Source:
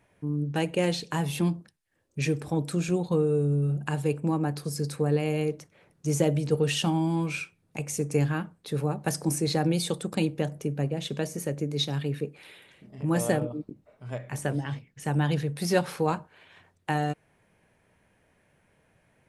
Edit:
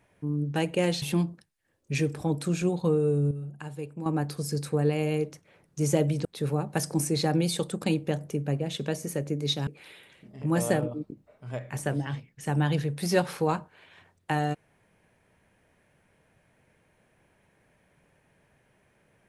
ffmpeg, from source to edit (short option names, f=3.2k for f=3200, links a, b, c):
-filter_complex "[0:a]asplit=6[a][b][c][d][e][f];[a]atrim=end=1.022[g];[b]atrim=start=1.288:end=3.582[h];[c]atrim=start=3.578:end=4.332,asetpts=PTS-STARTPTS,volume=-10dB[i];[d]atrim=start=4.328:end=6.522[j];[e]atrim=start=8.558:end=11.982[k];[f]atrim=start=12.258[l];[g][h]acrossfade=d=0.004:c1=hsin:c2=hsin[m];[m][i]acrossfade=d=0.004:c1=hsin:c2=hsin[n];[n][j]acrossfade=d=0.004:c1=hsin:c2=hsin[o];[o][k]acrossfade=d=0.004:c1=hsin:c2=hsin[p];[p][l]acrossfade=d=0.004:c1=hsin:c2=hsin"